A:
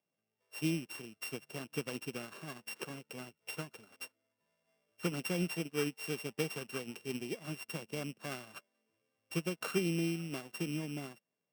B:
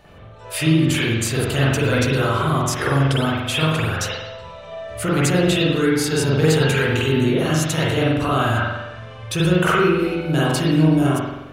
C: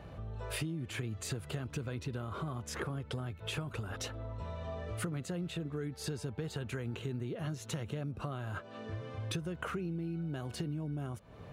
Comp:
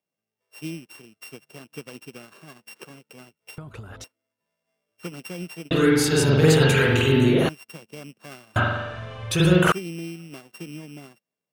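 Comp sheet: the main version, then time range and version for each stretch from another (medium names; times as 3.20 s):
A
3.58–4.04 s: from C
5.71–7.49 s: from B
8.56–9.72 s: from B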